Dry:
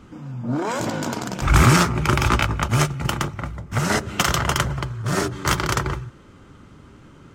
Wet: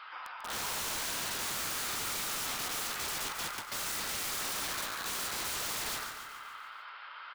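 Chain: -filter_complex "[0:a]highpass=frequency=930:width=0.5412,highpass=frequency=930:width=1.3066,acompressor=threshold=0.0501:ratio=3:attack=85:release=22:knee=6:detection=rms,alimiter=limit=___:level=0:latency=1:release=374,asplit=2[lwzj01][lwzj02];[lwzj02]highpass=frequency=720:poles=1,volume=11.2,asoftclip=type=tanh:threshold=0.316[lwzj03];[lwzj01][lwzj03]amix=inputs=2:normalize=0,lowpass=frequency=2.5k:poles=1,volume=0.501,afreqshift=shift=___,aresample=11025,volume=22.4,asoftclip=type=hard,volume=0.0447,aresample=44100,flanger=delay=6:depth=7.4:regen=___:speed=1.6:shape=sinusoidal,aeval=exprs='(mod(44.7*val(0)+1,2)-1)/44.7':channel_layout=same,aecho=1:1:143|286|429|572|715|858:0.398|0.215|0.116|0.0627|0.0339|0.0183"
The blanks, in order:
0.316, 21, -67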